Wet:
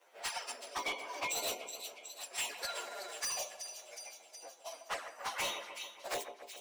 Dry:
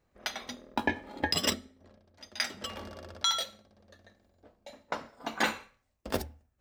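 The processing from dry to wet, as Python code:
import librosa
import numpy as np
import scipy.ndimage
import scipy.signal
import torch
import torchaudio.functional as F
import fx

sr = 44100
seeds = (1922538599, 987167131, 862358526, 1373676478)

p1 = fx.partial_stretch(x, sr, pct=114)
p2 = scipy.signal.sosfilt(scipy.signal.butter(4, 480.0, 'highpass', fs=sr, output='sos'), p1)
p3 = 10.0 ** (-35.5 / 20.0) * np.tanh(p2 / 10.0 ** (-35.5 / 20.0))
p4 = p2 + (p3 * librosa.db_to_amplitude(-6.0))
p5 = fx.env_flanger(p4, sr, rest_ms=11.9, full_db=-32.0)
p6 = p5 + fx.echo_split(p5, sr, split_hz=2600.0, low_ms=139, high_ms=368, feedback_pct=52, wet_db=-13.5, dry=0)
p7 = np.clip(10.0 ** (36.0 / 20.0) * p6, -1.0, 1.0) / 10.0 ** (36.0 / 20.0)
p8 = fx.band_squash(p7, sr, depth_pct=40)
y = p8 * librosa.db_to_amplitude(4.5)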